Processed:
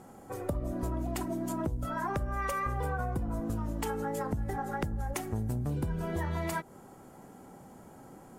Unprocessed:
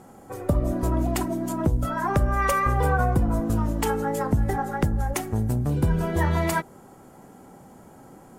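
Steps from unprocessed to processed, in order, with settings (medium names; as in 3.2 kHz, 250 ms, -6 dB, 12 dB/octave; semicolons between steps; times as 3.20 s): compression 4:1, threshold -27 dBFS, peak gain reduction 9.5 dB; trim -3.5 dB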